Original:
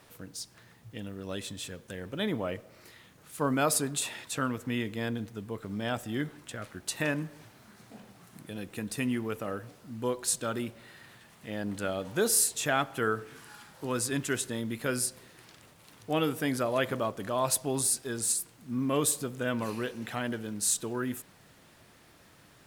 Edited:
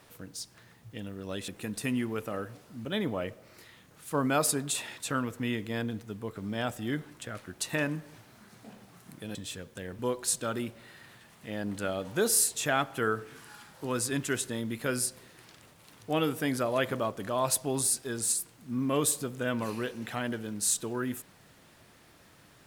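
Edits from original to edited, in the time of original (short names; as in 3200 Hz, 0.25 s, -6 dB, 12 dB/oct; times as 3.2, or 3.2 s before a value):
1.48–2.12 swap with 8.62–9.99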